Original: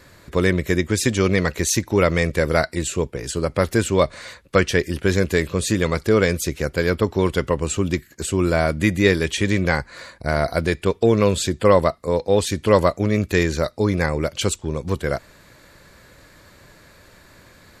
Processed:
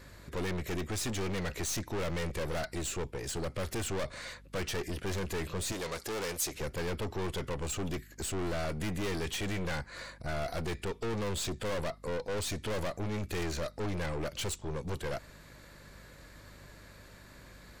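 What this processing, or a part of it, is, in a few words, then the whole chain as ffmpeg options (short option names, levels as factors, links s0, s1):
valve amplifier with mains hum: -filter_complex "[0:a]aeval=exprs='(tanh(25.1*val(0)+0.35)-tanh(0.35))/25.1':c=same,aeval=exprs='val(0)+0.00282*(sin(2*PI*50*n/s)+sin(2*PI*2*50*n/s)/2+sin(2*PI*3*50*n/s)/3+sin(2*PI*4*50*n/s)/4+sin(2*PI*5*50*n/s)/5)':c=same,asettb=1/sr,asplit=3[s0][s1][s2];[s0]atrim=end=5.724[s3];[s1]atrim=start=5.72:end=6.55,asetpts=PTS-STARTPTS,afade=t=in:d=0.004:c=qsin,afade=t=out:st=0.826:d=0.004:c=qsin,bass=f=250:g=-10,treble=f=4000:g=6[s4];[s2]atrim=start=6.546[s5];[s3][s4]acrossfade=d=0.004:c1=hsin:c2=qsin[s6];[s6][s5]acrossfade=d=0.004:c1=qsin:c2=hsin,volume=0.596"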